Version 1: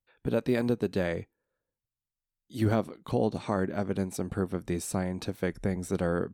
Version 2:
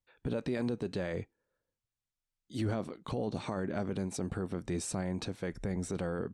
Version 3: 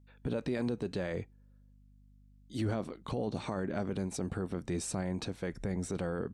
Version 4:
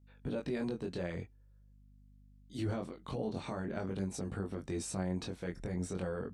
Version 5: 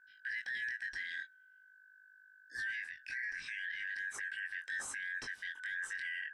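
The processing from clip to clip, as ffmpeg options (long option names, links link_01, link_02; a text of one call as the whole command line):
ffmpeg -i in.wav -af "lowpass=frequency=9200:width=0.5412,lowpass=frequency=9200:width=1.3066,alimiter=level_in=1dB:limit=-24dB:level=0:latency=1:release=19,volume=-1dB" out.wav
ffmpeg -i in.wav -af "aeval=exprs='val(0)+0.00112*(sin(2*PI*50*n/s)+sin(2*PI*2*50*n/s)/2+sin(2*PI*3*50*n/s)/3+sin(2*PI*4*50*n/s)/4+sin(2*PI*5*50*n/s)/5)':channel_layout=same" out.wav
ffmpeg -i in.wav -af "flanger=delay=20:depth=2.9:speed=0.45" out.wav
ffmpeg -i in.wav -af "afftfilt=real='real(if(lt(b,272),68*(eq(floor(b/68),0)*3+eq(floor(b/68),1)*0+eq(floor(b/68),2)*1+eq(floor(b/68),3)*2)+mod(b,68),b),0)':imag='imag(if(lt(b,272),68*(eq(floor(b/68),0)*3+eq(floor(b/68),1)*0+eq(floor(b/68),2)*1+eq(floor(b/68),3)*2)+mod(b,68),b),0)':win_size=2048:overlap=0.75,alimiter=level_in=6dB:limit=-24dB:level=0:latency=1:release=12,volume=-6dB,volume=-1.5dB" out.wav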